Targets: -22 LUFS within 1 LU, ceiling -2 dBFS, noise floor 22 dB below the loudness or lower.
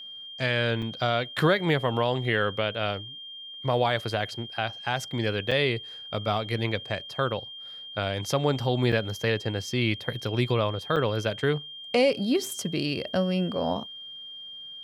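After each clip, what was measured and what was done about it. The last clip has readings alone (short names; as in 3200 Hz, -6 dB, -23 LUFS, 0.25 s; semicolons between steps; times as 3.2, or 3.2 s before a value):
dropouts 4; longest dropout 5.5 ms; steady tone 3200 Hz; tone level -39 dBFS; loudness -27.5 LUFS; peak -12.0 dBFS; loudness target -22.0 LUFS
-> interpolate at 0.82/5.51/8.92/10.96, 5.5 ms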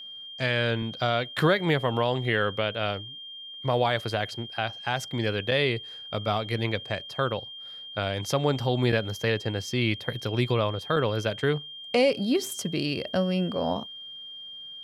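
dropouts 0; steady tone 3200 Hz; tone level -39 dBFS
-> notch 3200 Hz, Q 30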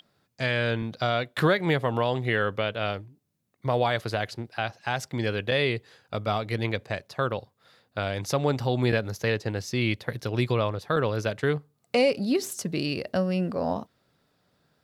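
steady tone none; loudness -27.5 LUFS; peak -12.0 dBFS; loudness target -22.0 LUFS
-> gain +5.5 dB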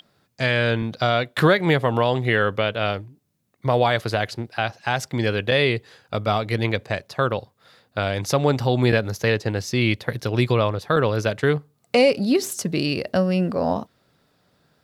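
loudness -22.0 LUFS; peak -6.5 dBFS; noise floor -68 dBFS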